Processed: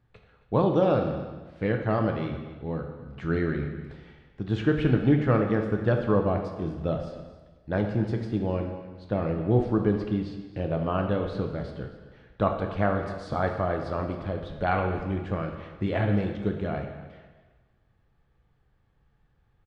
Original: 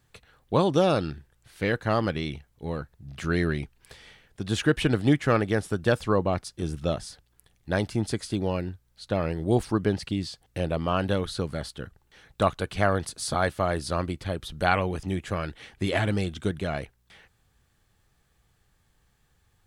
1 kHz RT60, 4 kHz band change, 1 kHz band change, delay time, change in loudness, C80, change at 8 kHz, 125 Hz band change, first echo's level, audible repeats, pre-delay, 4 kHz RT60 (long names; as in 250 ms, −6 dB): 1.3 s, −10.5 dB, −1.5 dB, 266 ms, 0.0 dB, 7.5 dB, below −20 dB, +1.0 dB, −16.5 dB, 1, 5 ms, 1.2 s